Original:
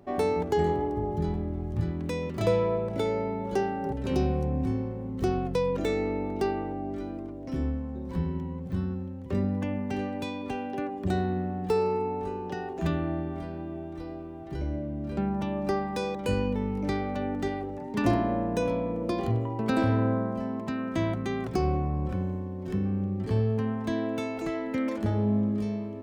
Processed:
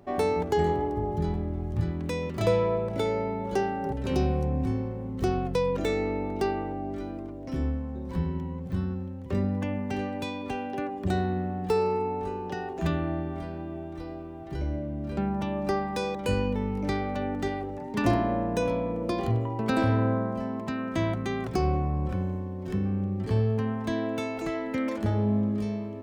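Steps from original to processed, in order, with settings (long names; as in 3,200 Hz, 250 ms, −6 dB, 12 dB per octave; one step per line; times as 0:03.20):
parametric band 270 Hz −2.5 dB 1.9 octaves
level +2 dB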